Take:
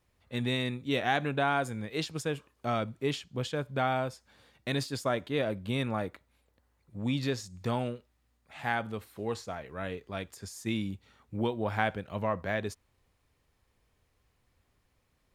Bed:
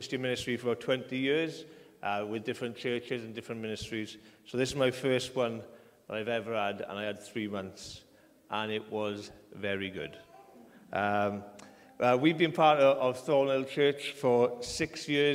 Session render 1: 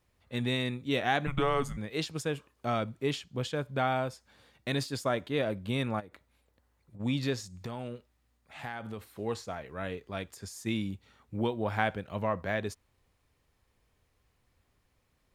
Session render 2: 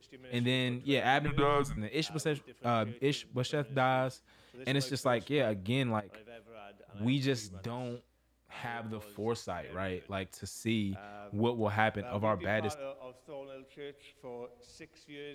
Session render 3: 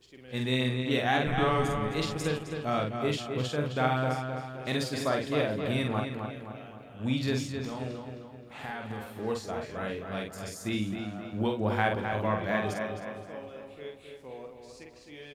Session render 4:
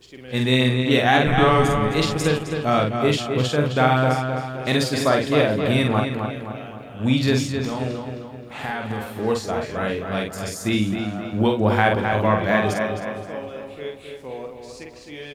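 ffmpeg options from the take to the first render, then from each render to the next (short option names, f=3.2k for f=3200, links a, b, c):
-filter_complex "[0:a]asplit=3[a][b][c];[a]afade=t=out:st=1.26:d=0.02[d];[b]afreqshift=-270,afade=t=in:st=1.26:d=0.02,afade=t=out:st=1.76:d=0.02[e];[c]afade=t=in:st=1.76:d=0.02[f];[d][e][f]amix=inputs=3:normalize=0,asplit=3[g][h][i];[g]afade=t=out:st=5.99:d=0.02[j];[h]acompressor=threshold=-44dB:ratio=12:attack=3.2:release=140:knee=1:detection=peak,afade=t=in:st=5.99:d=0.02,afade=t=out:st=6.99:d=0.02[k];[i]afade=t=in:st=6.99:d=0.02[l];[j][k][l]amix=inputs=3:normalize=0,asettb=1/sr,asplit=3[m][n][o];[m]atrim=end=7.514[p];[n]atrim=start=7.51:end=9.05,asetpts=PTS-STARTPTS,afade=t=in:d=0.004:c=qsin,afade=t=out:st=1.536:d=0.004:c=qsin,acompressor=threshold=-34dB:ratio=6:attack=3.2:release=140:knee=1:detection=peak[q];[o]atrim=start=9.046[r];[p][q]acrossfade=d=0.004:c1=hsin:c2=qsin[s];[s][r]acrossfade=d=0.004:c1=qsin:c2=hsin"
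-filter_complex "[1:a]volume=-19dB[a];[0:a][a]amix=inputs=2:normalize=0"
-filter_complex "[0:a]asplit=2[a][b];[b]adelay=47,volume=-4dB[c];[a][c]amix=inputs=2:normalize=0,asplit=2[d][e];[e]adelay=262,lowpass=f=4k:p=1,volume=-6dB,asplit=2[f][g];[g]adelay=262,lowpass=f=4k:p=1,volume=0.51,asplit=2[h][i];[i]adelay=262,lowpass=f=4k:p=1,volume=0.51,asplit=2[j][k];[k]adelay=262,lowpass=f=4k:p=1,volume=0.51,asplit=2[l][m];[m]adelay=262,lowpass=f=4k:p=1,volume=0.51,asplit=2[n][o];[o]adelay=262,lowpass=f=4k:p=1,volume=0.51[p];[f][h][j][l][n][p]amix=inputs=6:normalize=0[q];[d][q]amix=inputs=2:normalize=0"
-af "volume=10dB,alimiter=limit=-3dB:level=0:latency=1"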